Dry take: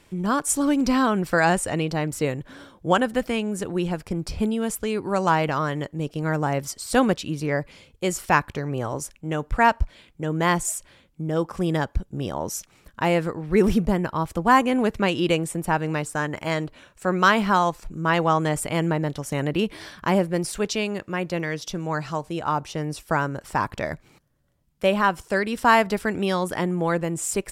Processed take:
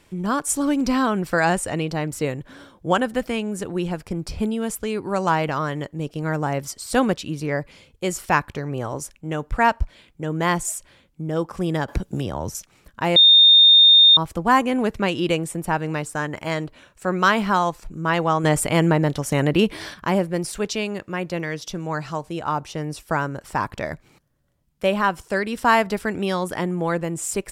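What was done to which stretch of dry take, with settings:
0:11.88–0:12.55: multiband upward and downward compressor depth 100%
0:13.16–0:14.17: beep over 3,650 Hz −8 dBFS
0:18.44–0:19.94: clip gain +5.5 dB

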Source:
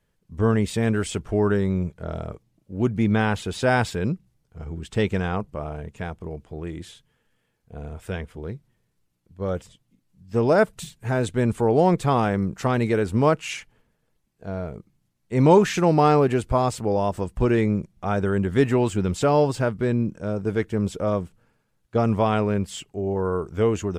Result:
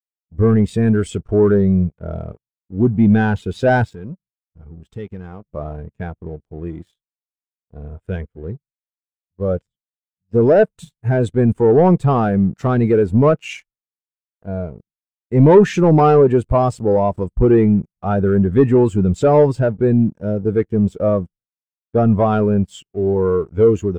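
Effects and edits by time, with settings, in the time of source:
0:03.84–0:05.50: downward compressor 2 to 1, threshold −38 dBFS
whole clip: downward expander −48 dBFS; leveller curve on the samples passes 3; every bin expanded away from the loudest bin 1.5 to 1; level +2 dB

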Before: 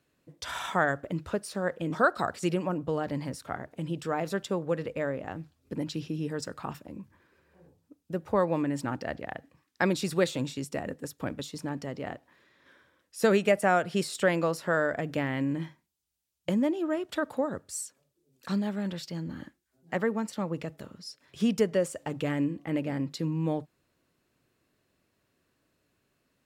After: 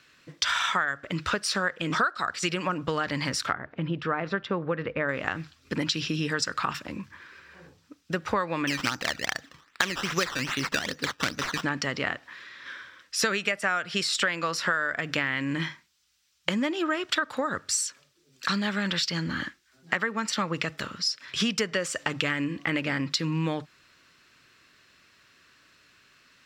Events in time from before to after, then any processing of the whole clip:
0:03.53–0:05.09: head-to-tape spacing loss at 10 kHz 43 dB
0:08.67–0:11.64: sample-and-hold swept by an LFO 14× 2.5 Hz
whole clip: flat-topped bell 2,800 Hz +14.5 dB 3 octaves; notch filter 6,600 Hz, Q 18; downward compressor 8 to 1, threshold −29 dBFS; level +5.5 dB

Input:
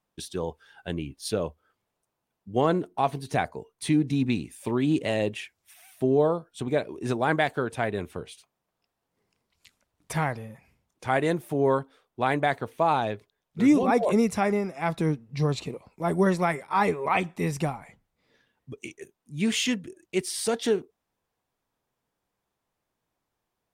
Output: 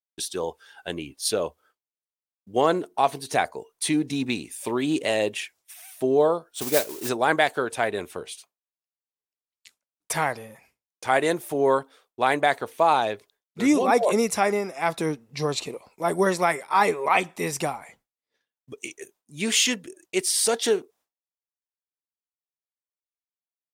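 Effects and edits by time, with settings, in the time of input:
0:06.53–0:07.09: noise that follows the level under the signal 12 dB
whole clip: downward expander −54 dBFS; bass and treble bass −13 dB, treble +6 dB; level +4 dB

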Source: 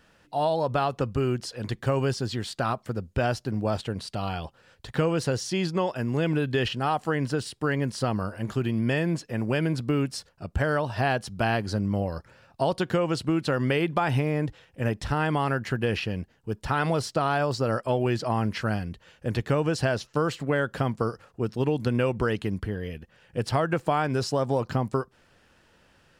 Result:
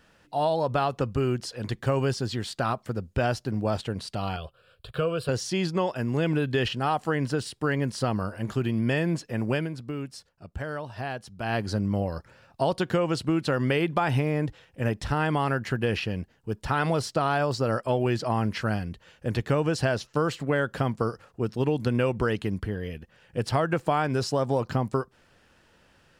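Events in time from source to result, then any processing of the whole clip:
0:04.36–0:05.29: phaser with its sweep stopped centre 1,300 Hz, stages 8
0:09.53–0:11.59: duck −8.5 dB, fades 0.17 s

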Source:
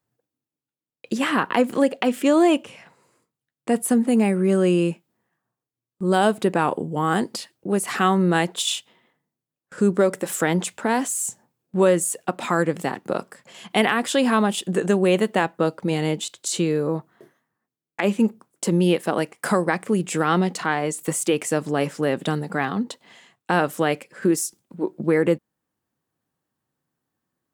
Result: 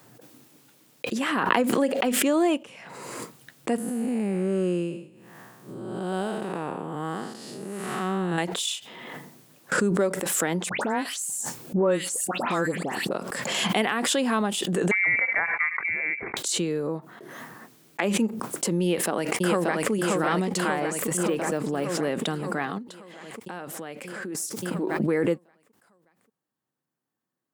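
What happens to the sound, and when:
0:03.78–0:08.38: spectrum smeared in time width 276 ms
0:10.69–0:13.11: all-pass dispersion highs, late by 130 ms, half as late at 2,400 Hz
0:14.91–0:16.37: voice inversion scrambler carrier 2,500 Hz
0:18.82–0:19.91: delay throw 580 ms, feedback 65%, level −2 dB
0:21.17–0:21.84: de-essing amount 90%
0:22.78–0:24.35: downward compressor 2 to 1, threshold −36 dBFS
whole clip: high-pass filter 140 Hz; background raised ahead of every attack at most 25 dB per second; level −5.5 dB

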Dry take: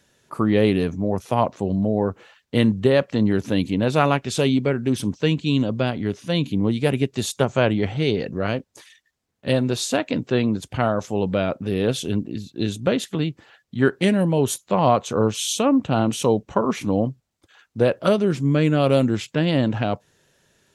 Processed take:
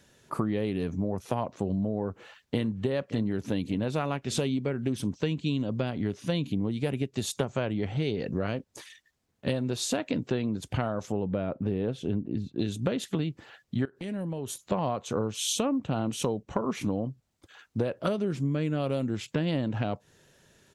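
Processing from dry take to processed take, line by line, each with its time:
0:02.02–0:02.72: delay throw 570 ms, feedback 45%, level −14.5 dB
0:11.12–0:12.59: low-pass filter 1,200 Hz 6 dB per octave
0:13.85–0:14.72: downward compressor 10 to 1, threshold −32 dBFS
whole clip: low-shelf EQ 450 Hz +3 dB; downward compressor 10 to 1, threshold −25 dBFS

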